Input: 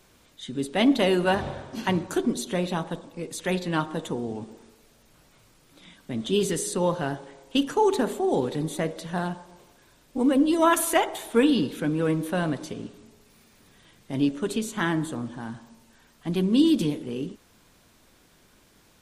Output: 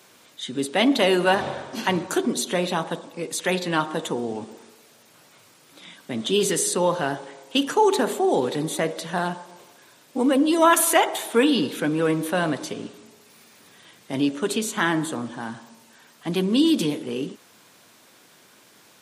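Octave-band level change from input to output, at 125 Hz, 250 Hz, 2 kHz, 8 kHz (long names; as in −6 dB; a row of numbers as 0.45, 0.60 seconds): −1.5, +1.0, +5.5, +7.0 decibels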